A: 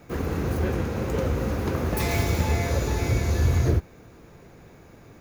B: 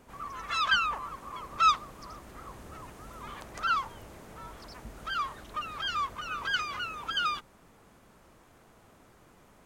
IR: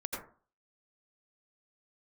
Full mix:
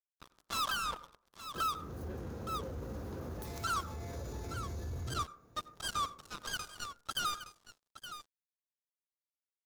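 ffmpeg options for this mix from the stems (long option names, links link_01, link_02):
-filter_complex "[0:a]alimiter=limit=-19.5dB:level=0:latency=1:release=15,adelay=1450,volume=-14.5dB[link_01];[1:a]equalizer=frequency=1900:width_type=o:width=0.43:gain=-11.5,acrusher=bits=4:mix=0:aa=0.5,volume=-1dB,asplit=3[link_02][link_03][link_04];[link_03]volume=-18dB[link_05];[link_04]volume=-13dB[link_06];[2:a]atrim=start_sample=2205[link_07];[link_05][link_07]afir=irnorm=-1:irlink=0[link_08];[link_06]aecho=0:1:868:1[link_09];[link_01][link_02][link_08][link_09]amix=inputs=4:normalize=0,equalizer=frequency=2300:width_type=o:width=0.78:gain=-8.5,alimiter=level_in=2dB:limit=-24dB:level=0:latency=1:release=341,volume=-2dB"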